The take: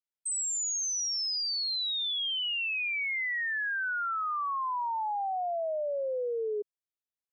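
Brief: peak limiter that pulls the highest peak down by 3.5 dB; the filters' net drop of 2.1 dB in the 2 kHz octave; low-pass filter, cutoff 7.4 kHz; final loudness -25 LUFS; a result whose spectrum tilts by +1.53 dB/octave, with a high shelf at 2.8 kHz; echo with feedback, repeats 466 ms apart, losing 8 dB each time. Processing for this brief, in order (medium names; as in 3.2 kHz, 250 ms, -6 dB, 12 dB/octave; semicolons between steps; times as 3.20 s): low-pass 7.4 kHz; peaking EQ 2 kHz -5.5 dB; treble shelf 2.8 kHz +6.5 dB; peak limiter -28.5 dBFS; feedback delay 466 ms, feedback 40%, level -8 dB; trim +4.5 dB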